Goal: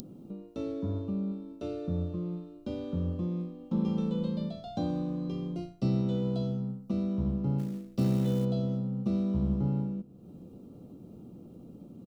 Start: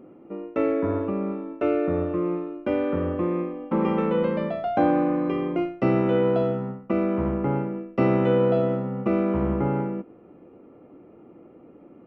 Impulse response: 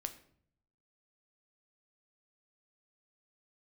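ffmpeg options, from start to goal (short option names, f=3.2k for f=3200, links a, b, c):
-filter_complex "[0:a]acompressor=mode=upward:threshold=-29dB:ratio=2.5,firequalizer=gain_entry='entry(200,0);entry(310,-13);entry(2000,-25);entry(3800,11)':delay=0.05:min_phase=1,asplit=3[a][b][c];[a]afade=t=out:st=7.58:d=0.02[d];[b]acrusher=bits=6:mode=log:mix=0:aa=0.000001,afade=t=in:st=7.58:d=0.02,afade=t=out:st=8.44:d=0.02[e];[c]afade=t=in:st=8.44:d=0.02[f];[d][e][f]amix=inputs=3:normalize=0,asplit=2[g][h];[1:a]atrim=start_sample=2205,lowpass=2.3k[i];[h][i]afir=irnorm=-1:irlink=0,volume=-6dB[j];[g][j]amix=inputs=2:normalize=0,volume=-3.5dB"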